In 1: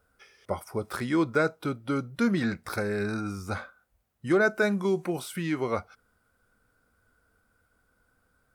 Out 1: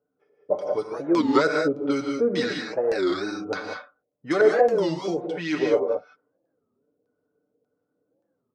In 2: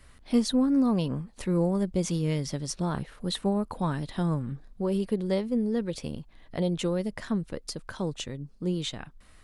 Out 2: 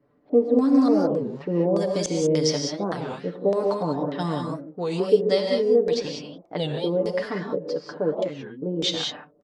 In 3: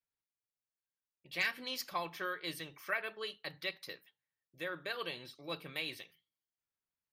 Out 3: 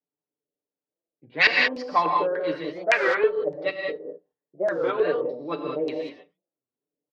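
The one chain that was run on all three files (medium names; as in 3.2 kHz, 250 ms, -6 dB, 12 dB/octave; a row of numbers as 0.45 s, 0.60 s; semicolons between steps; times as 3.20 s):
level-controlled noise filter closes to 380 Hz, open at -24.5 dBFS; high-pass 290 Hz 12 dB/octave; treble shelf 9.8 kHz +9 dB; comb 6.8 ms, depth 72%; LFO low-pass square 1.7 Hz 510–5400 Hz; gated-style reverb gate 220 ms rising, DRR 1.5 dB; warped record 33 1/3 rpm, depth 250 cents; normalise loudness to -24 LUFS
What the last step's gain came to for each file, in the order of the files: +1.5 dB, +3.5 dB, +14.5 dB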